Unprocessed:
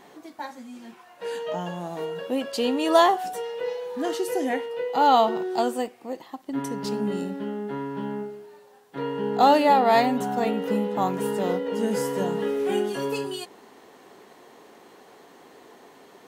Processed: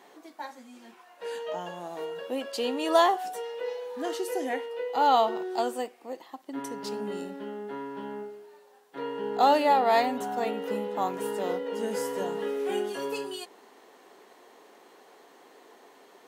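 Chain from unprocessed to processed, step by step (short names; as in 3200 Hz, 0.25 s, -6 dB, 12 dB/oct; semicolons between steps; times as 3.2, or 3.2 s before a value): HPF 300 Hz 12 dB/oct; gain -3.5 dB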